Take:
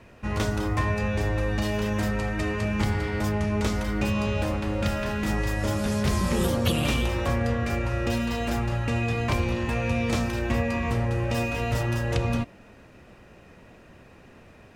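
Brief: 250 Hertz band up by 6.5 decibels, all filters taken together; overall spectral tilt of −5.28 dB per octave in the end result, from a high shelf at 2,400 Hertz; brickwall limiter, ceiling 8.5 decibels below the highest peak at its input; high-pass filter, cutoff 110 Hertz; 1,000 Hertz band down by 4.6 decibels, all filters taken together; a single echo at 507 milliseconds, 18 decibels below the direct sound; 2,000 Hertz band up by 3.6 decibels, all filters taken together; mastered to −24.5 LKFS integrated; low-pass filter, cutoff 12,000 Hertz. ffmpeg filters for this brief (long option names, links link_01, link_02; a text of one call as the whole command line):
ffmpeg -i in.wav -af "highpass=110,lowpass=12000,equalizer=frequency=250:width_type=o:gain=8.5,equalizer=frequency=1000:width_type=o:gain=-9,equalizer=frequency=2000:width_type=o:gain=4,highshelf=frequency=2400:gain=5,alimiter=limit=-16dB:level=0:latency=1,aecho=1:1:507:0.126,volume=0.5dB" out.wav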